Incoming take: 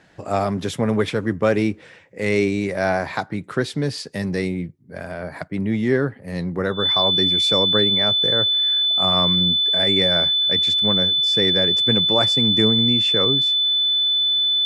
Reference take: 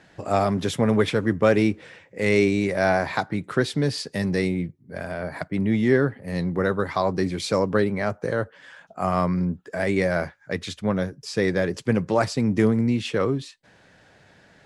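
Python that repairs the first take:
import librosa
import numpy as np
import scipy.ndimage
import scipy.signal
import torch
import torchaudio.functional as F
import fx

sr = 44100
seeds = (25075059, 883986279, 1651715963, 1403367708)

y = fx.notch(x, sr, hz=3500.0, q=30.0)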